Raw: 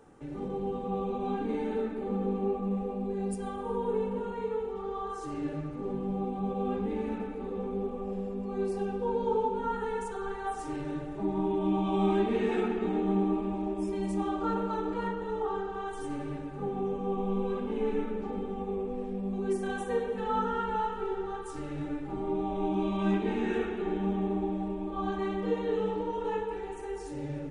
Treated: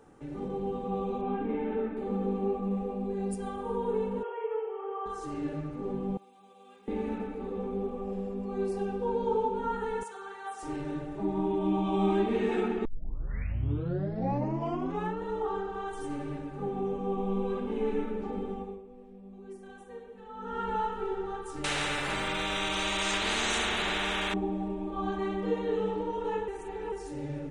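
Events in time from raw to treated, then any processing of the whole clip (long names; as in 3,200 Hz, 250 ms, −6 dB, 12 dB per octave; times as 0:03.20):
0:01.21–0:01.97: Savitzky-Golay smoothing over 25 samples
0:04.23–0:05.06: linear-phase brick-wall band-pass 370–3,400 Hz
0:06.17–0:06.88: first difference
0:10.03–0:10.63: high-pass filter 1,200 Hz 6 dB per octave
0:12.85: tape start 2.39 s
0:18.51–0:20.68: duck −15 dB, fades 0.30 s
0:21.64–0:24.34: every bin compressed towards the loudest bin 10 to 1
0:26.48–0:26.92: reverse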